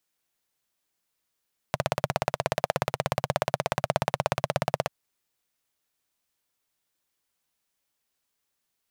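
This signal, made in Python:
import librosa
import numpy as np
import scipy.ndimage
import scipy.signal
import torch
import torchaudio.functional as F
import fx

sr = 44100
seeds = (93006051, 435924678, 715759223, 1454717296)

y = fx.engine_single(sr, seeds[0], length_s=3.14, rpm=2000, resonances_hz=(140.0, 620.0))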